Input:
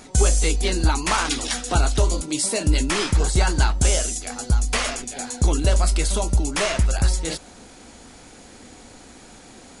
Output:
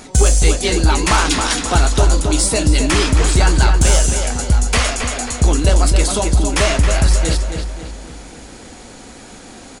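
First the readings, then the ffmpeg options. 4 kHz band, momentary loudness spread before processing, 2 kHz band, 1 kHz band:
+6.5 dB, 6 LU, +6.5 dB, +7.0 dB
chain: -filter_complex "[0:a]asplit=2[a][b];[b]adelay=270,lowpass=f=4k:p=1,volume=-6dB,asplit=2[c][d];[d]adelay=270,lowpass=f=4k:p=1,volume=0.46,asplit=2[e][f];[f]adelay=270,lowpass=f=4k:p=1,volume=0.46,asplit=2[g][h];[h]adelay=270,lowpass=f=4k:p=1,volume=0.46,asplit=2[i][j];[j]adelay=270,lowpass=f=4k:p=1,volume=0.46,asplit=2[k][l];[l]adelay=270,lowpass=f=4k:p=1,volume=0.46[m];[a][c][e][g][i][k][m]amix=inputs=7:normalize=0,acontrast=66"

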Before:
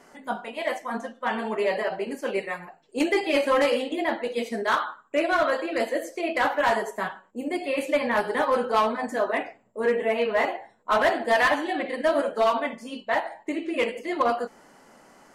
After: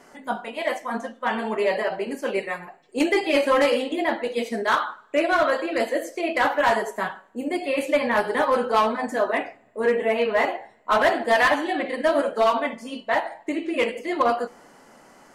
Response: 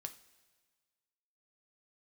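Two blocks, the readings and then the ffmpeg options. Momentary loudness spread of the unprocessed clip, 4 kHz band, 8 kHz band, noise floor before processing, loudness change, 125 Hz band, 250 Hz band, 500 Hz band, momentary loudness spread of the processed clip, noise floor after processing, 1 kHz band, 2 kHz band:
10 LU, +2.5 dB, +2.5 dB, -58 dBFS, +2.5 dB, n/a, +2.5 dB, +2.0 dB, 10 LU, -54 dBFS, +2.5 dB, +2.5 dB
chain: -filter_complex "[0:a]asplit=2[a][b];[1:a]atrim=start_sample=2205[c];[b][c]afir=irnorm=-1:irlink=0,volume=-6dB[d];[a][d]amix=inputs=2:normalize=0"

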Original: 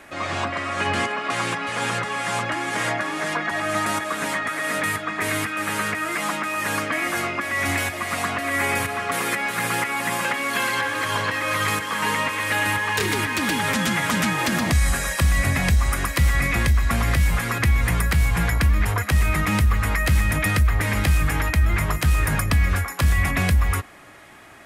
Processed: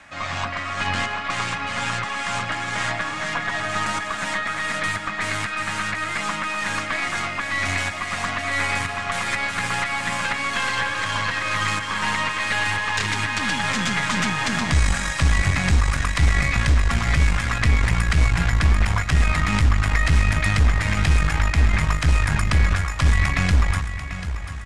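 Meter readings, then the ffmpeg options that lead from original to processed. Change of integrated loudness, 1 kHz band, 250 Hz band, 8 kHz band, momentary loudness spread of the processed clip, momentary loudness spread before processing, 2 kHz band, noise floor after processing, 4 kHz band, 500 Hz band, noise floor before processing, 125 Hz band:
0.0 dB, -0.5 dB, -2.0 dB, -2.0 dB, 6 LU, 4 LU, +0.5 dB, -29 dBFS, +1.5 dB, -4.5 dB, -31 dBFS, +1.0 dB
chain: -filter_complex "[0:a]acrossover=split=290|2400[a][b][c];[a]acrusher=bits=4:mode=log:mix=0:aa=0.000001[d];[b]highpass=710[e];[d][e][c]amix=inputs=3:normalize=0,aecho=1:1:740|1480|2220|2960|3700:0.282|0.144|0.0733|0.0374|0.0191,aeval=exprs='0.447*(cos(1*acos(clip(val(0)/0.447,-1,1)))-cos(1*PI/2))+0.0447*(cos(6*acos(clip(val(0)/0.447,-1,1)))-cos(6*PI/2))':c=same,lowpass=f=8k:w=0.5412,lowpass=f=8k:w=1.3066"

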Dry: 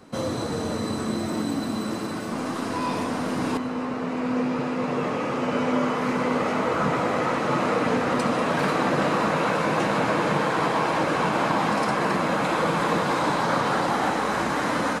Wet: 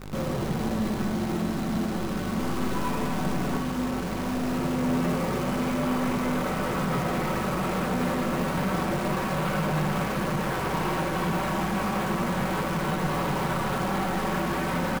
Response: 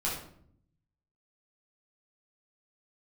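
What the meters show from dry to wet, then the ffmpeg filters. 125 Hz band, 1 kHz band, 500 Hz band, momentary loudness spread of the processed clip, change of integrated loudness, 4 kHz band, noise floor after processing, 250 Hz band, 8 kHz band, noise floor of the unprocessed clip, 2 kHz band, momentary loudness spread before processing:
+2.5 dB, -5.5 dB, -5.0 dB, 3 LU, -3.0 dB, -3.5 dB, -30 dBFS, -1.0 dB, -1.0 dB, -29 dBFS, -5.0 dB, 5 LU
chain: -filter_complex "[0:a]lowpass=f=3.1k:w=0.5412,lowpass=f=3.1k:w=1.3066,lowshelf=f=250:g=10,aecho=1:1:5.3:0.6,alimiter=limit=-12dB:level=0:latency=1,aeval=exprs='val(0)+0.0178*(sin(2*PI*50*n/s)+sin(2*PI*2*50*n/s)/2+sin(2*PI*3*50*n/s)/3+sin(2*PI*4*50*n/s)/4+sin(2*PI*5*50*n/s)/5)':c=same,aresample=11025,asoftclip=type=hard:threshold=-21.5dB,aresample=44100,flanger=delay=6.6:depth=5.3:regen=78:speed=0.31:shape=sinusoidal,acrusher=bits=7:dc=4:mix=0:aa=0.000001,asplit=2[a][b];[1:a]atrim=start_sample=2205,adelay=51[c];[b][c]afir=irnorm=-1:irlink=0,volume=-12.5dB[d];[a][d]amix=inputs=2:normalize=0"

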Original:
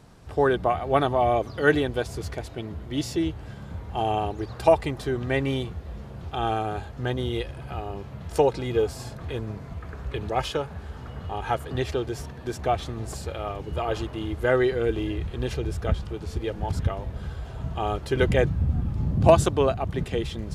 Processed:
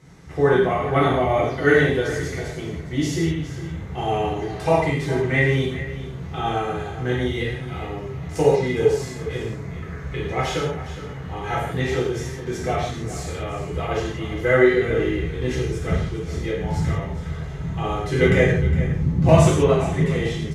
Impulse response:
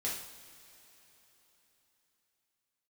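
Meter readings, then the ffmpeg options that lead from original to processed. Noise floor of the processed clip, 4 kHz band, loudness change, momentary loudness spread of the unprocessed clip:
-33 dBFS, +3.0 dB, +4.5 dB, 14 LU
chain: -filter_complex "[0:a]equalizer=f=160:t=o:w=0.33:g=12,equalizer=f=400:t=o:w=0.33:g=5,equalizer=f=2k:t=o:w=0.33:g=12,equalizer=f=6.3k:t=o:w=0.33:g=7,aecho=1:1:411:0.211[a];[1:a]atrim=start_sample=2205,afade=t=out:st=0.17:d=0.01,atrim=end_sample=7938,asetrate=28224,aresample=44100[b];[a][b]afir=irnorm=-1:irlink=0,volume=-4.5dB"

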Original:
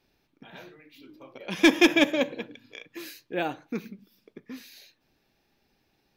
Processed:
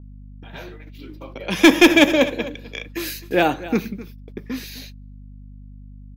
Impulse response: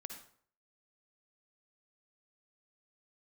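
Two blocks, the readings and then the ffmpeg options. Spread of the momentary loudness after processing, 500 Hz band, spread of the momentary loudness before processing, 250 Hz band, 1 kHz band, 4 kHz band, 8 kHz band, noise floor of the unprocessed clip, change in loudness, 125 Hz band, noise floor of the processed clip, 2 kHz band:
21 LU, +8.5 dB, 24 LU, +8.0 dB, +10.0 dB, +7.5 dB, +8.5 dB, -73 dBFS, +7.0 dB, +13.0 dB, -40 dBFS, +7.5 dB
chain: -filter_complex "[0:a]acrossover=split=160|850|5000[a][b][c][d];[d]aeval=exprs='clip(val(0),-1,0.0075)':c=same[e];[a][b][c][e]amix=inputs=4:normalize=0,dynaudnorm=f=100:g=13:m=7dB,aecho=1:1:258:0.141,acontrast=54,agate=range=-38dB:threshold=-40dB:ratio=16:detection=peak,aeval=exprs='val(0)+0.0126*(sin(2*PI*50*n/s)+sin(2*PI*2*50*n/s)/2+sin(2*PI*3*50*n/s)/3+sin(2*PI*4*50*n/s)/4+sin(2*PI*5*50*n/s)/5)':c=same,adynamicequalizer=threshold=0.0158:dfrequency=6700:dqfactor=0.7:tfrequency=6700:tqfactor=0.7:attack=5:release=100:ratio=0.375:range=2:mode=boostabove:tftype=highshelf,volume=-1dB"

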